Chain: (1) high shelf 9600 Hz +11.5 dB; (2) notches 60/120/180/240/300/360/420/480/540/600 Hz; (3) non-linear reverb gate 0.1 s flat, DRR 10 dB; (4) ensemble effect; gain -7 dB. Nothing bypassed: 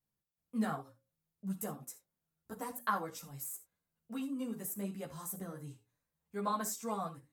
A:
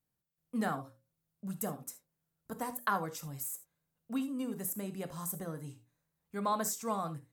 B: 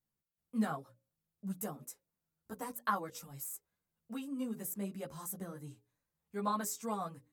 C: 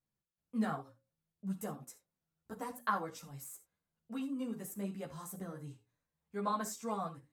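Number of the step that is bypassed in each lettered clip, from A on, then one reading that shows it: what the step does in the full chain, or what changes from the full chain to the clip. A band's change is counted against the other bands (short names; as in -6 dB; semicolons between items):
4, crest factor change -2.0 dB; 3, momentary loudness spread change -1 LU; 1, 8 kHz band -4.5 dB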